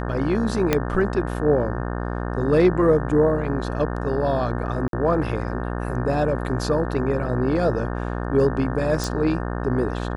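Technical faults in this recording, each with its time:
buzz 60 Hz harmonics 30 -27 dBFS
0.73 pop -4 dBFS
4.88–4.93 gap 52 ms
9.04 pop

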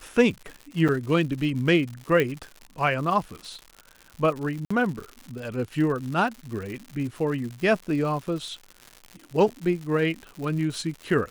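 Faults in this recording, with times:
crackle 160/s -33 dBFS
0.88–0.89 gap 6.6 ms
2.2 pop -11 dBFS
4.65–4.71 gap 55 ms

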